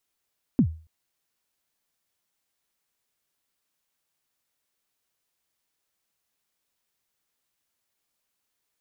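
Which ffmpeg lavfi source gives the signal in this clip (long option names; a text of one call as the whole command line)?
ffmpeg -f lavfi -i "aevalsrc='0.251*pow(10,-3*t/0.37)*sin(2*PI*(290*0.08/log(80/290)*(exp(log(80/290)*min(t,0.08)/0.08)-1)+80*max(t-0.08,0)))':duration=0.28:sample_rate=44100" out.wav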